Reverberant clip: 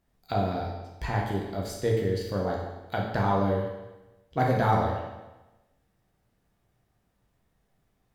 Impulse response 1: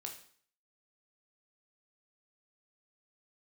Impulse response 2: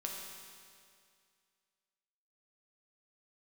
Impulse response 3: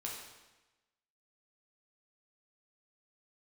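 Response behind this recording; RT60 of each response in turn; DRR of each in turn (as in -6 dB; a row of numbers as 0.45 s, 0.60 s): 3; 0.50 s, 2.2 s, 1.1 s; 1.5 dB, -1.5 dB, -3.0 dB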